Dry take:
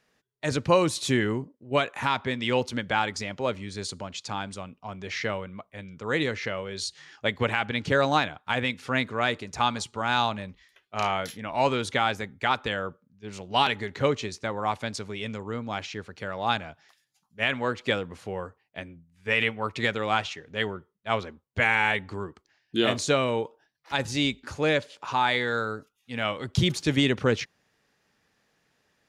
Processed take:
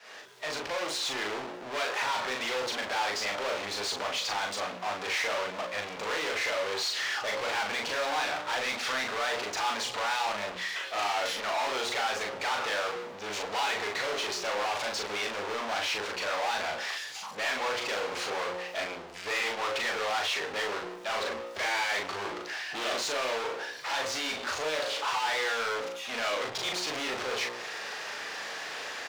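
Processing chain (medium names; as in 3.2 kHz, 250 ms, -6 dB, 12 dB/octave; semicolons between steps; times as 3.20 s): fade-in on the opening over 2.56 s; hum notches 60/120/180/240/300/360/420/480/540/600 Hz; power-law waveshaper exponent 0.35; saturation -22.5 dBFS, distortion -10 dB; three-band isolator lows -23 dB, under 420 Hz, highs -16 dB, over 6.7 kHz; doubling 39 ms -3 dB; trim -6.5 dB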